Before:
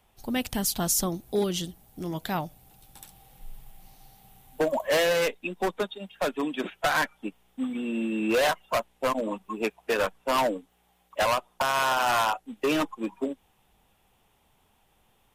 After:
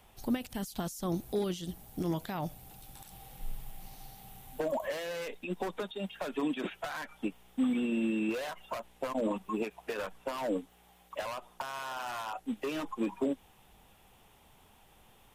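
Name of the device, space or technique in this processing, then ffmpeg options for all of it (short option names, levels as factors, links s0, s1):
de-esser from a sidechain: -filter_complex "[0:a]asplit=2[s0][s1];[s1]highpass=f=7000:p=1,apad=whole_len=676537[s2];[s0][s2]sidechaincompress=threshold=0.00178:ratio=4:attack=1.6:release=37,volume=1.78"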